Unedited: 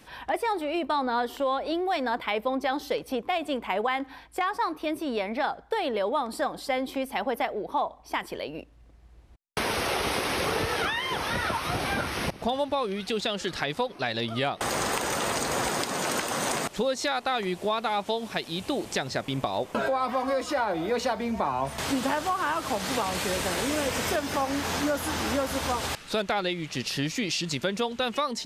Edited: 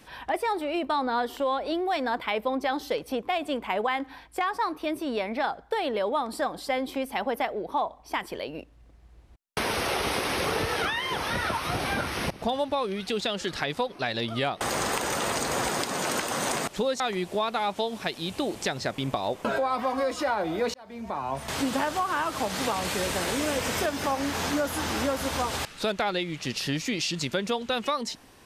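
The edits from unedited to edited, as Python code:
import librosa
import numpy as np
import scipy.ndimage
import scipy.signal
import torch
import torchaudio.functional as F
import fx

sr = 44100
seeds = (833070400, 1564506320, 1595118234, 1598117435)

y = fx.edit(x, sr, fx.cut(start_s=17.0, length_s=0.3),
    fx.fade_in_span(start_s=21.04, length_s=1.05, curve='qsin'), tone=tone)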